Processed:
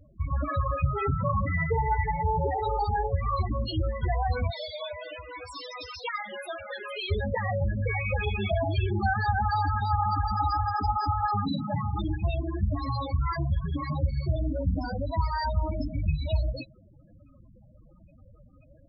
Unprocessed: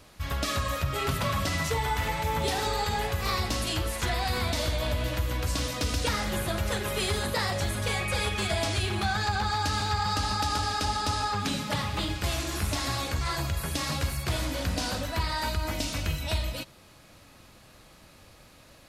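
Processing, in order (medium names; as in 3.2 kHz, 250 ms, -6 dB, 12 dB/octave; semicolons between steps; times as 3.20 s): 4.50–7.11 s: high-pass 1 kHz 6 dB/octave; loudest bins only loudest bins 8; trim +4 dB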